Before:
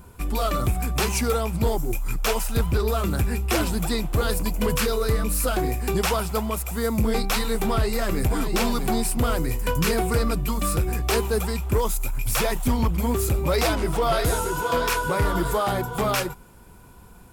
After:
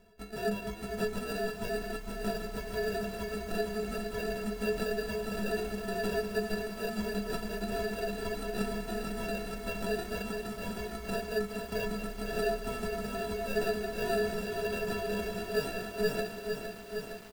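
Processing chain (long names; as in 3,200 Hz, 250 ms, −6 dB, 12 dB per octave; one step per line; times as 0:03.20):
mains-hum notches 50/100/150/200/250/300/350/400/450 Hz
reverb reduction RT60 1.1 s
graphic EQ with 15 bands 160 Hz −11 dB, 630 Hz +5 dB, 2,500 Hz +8 dB, 16,000 Hz +5 dB
asymmetric clip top −21.5 dBFS
decimation without filtering 41×
stiff-string resonator 200 Hz, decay 0.25 s, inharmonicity 0.03
single-tap delay 192 ms −10.5 dB
feedback echo at a low word length 461 ms, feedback 80%, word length 9 bits, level −7 dB
level +2 dB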